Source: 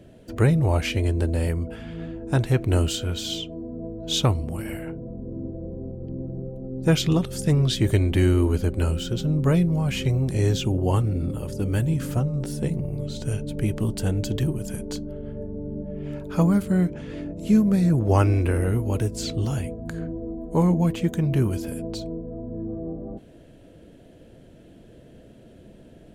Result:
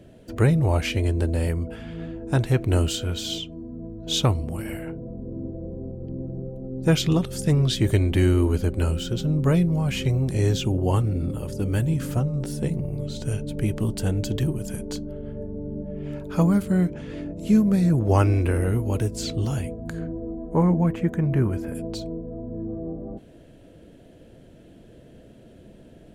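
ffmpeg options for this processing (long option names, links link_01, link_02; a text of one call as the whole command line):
ffmpeg -i in.wav -filter_complex "[0:a]asettb=1/sr,asplit=3[link_01][link_02][link_03];[link_01]atrim=end=3.384[link_04];[link_02]atrim=start=3.38:end=4.07,asetpts=PTS-STARTPTS,afade=type=in:duration=0.004:curve=qsin,afade=type=out:start_time=0.686:duration=0.004:curve=qsin,equalizer=frequency=560:width=1.5:gain=-10[link_05];[link_03]atrim=start=4.066[link_06];[link_04][link_05]acrossfade=duration=0.004:curve1=hsin:curve2=qsin[link_07];[link_07][link_06]acrossfade=duration=0.004:curve1=qsin:curve2=hsin,asettb=1/sr,asplit=3[link_08][link_09][link_10];[link_08]atrim=end=20.094[link_11];[link_09]atrim=start=20.09:end=21.75,asetpts=PTS-STARTPTS,afade=type=in:duration=0.004:curve=qsin,afade=type=out:start_time=1.656:duration=0.004:curve=qsin,highshelf=frequency=2600:width_type=q:width=1.5:gain=-10.5[link_12];[link_10]atrim=start=21.746[link_13];[link_11][link_12]acrossfade=duration=0.004:curve1=hsin:curve2=qsin[link_14];[link_14][link_13]acrossfade=duration=0.004:curve1=qsin:curve2=hsin" out.wav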